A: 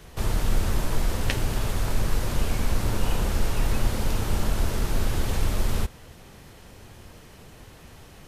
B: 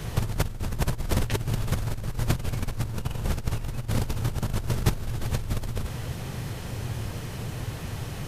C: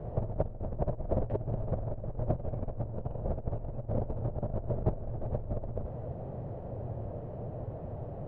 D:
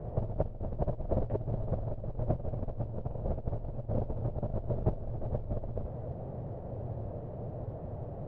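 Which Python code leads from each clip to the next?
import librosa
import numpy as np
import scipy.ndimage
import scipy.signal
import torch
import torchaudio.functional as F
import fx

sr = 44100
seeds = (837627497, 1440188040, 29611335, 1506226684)

y1 = fx.peak_eq(x, sr, hz=120.0, db=11.5, octaves=0.76)
y1 = fx.over_compress(y1, sr, threshold_db=-26.0, ratio=-0.5)
y1 = y1 * librosa.db_to_amplitude(1.5)
y2 = fx.lowpass_res(y1, sr, hz=620.0, q=4.1)
y2 = y2 * librosa.db_to_amplitude(-7.0)
y3 = fx.mod_noise(y2, sr, seeds[0], snr_db=34)
y3 = fx.air_absorb(y3, sr, metres=270.0)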